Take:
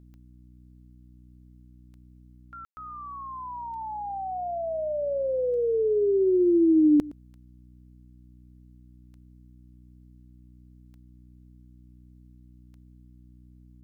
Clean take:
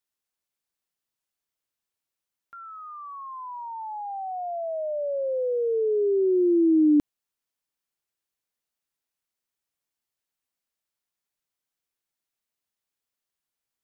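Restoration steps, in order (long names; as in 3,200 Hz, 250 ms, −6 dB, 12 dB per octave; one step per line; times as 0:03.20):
click removal
hum removal 61.4 Hz, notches 5
ambience match 0:02.65–0:02.77
echo removal 115 ms −20 dB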